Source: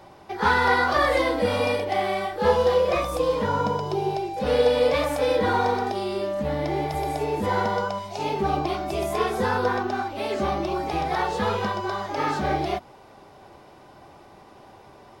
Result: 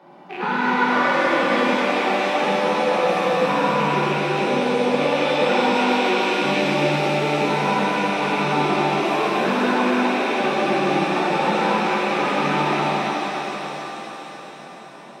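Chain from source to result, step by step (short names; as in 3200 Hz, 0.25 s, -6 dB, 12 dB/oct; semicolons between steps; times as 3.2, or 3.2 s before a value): rattling part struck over -41 dBFS, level -19 dBFS; steep high-pass 150 Hz 72 dB/oct; tone controls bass +6 dB, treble -14 dB; thinning echo 0.28 s, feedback 62%, high-pass 490 Hz, level -7 dB; compressor, threshold -20 dBFS, peak gain reduction 7 dB; 4.99–6.6 resonant high shelf 5100 Hz -13 dB, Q 3; shimmer reverb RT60 3.9 s, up +7 st, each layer -8 dB, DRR -6.5 dB; gain -2.5 dB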